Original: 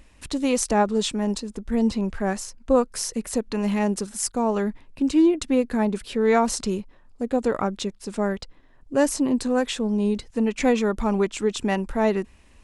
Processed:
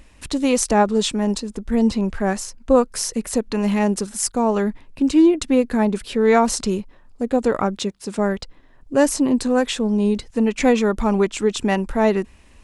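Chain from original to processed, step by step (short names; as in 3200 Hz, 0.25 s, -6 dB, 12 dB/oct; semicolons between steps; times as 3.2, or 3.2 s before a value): 7.77–8.19 HPF 62 Hz; gain +4 dB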